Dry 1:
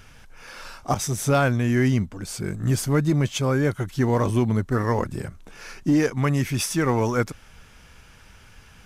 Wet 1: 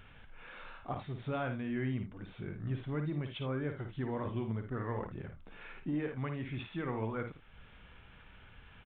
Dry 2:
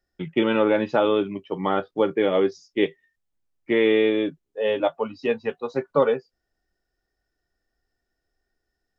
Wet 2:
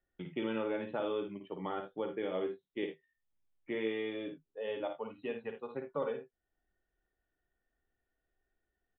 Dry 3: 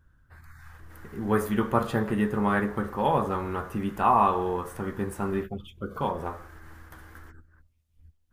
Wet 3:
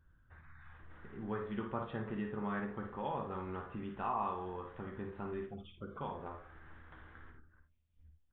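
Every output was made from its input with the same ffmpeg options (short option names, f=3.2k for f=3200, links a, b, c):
-filter_complex "[0:a]acompressor=threshold=-45dB:ratio=1.5,asplit=2[a][b];[b]aecho=0:1:54|80:0.447|0.211[c];[a][c]amix=inputs=2:normalize=0,aresample=8000,aresample=44100,volume=-6.5dB"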